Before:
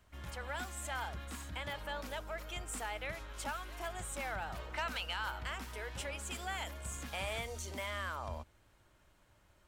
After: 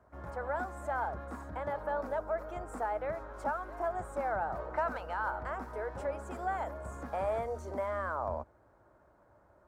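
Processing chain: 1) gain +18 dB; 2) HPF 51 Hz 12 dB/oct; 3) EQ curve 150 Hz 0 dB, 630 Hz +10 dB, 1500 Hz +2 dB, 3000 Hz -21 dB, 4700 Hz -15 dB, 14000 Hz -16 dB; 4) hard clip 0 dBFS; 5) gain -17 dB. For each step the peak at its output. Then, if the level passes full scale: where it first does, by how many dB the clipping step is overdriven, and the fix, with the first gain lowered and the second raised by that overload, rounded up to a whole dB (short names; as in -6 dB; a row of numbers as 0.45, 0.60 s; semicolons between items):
-10.0, -8.0, -4.0, -4.0, -21.0 dBFS; no overload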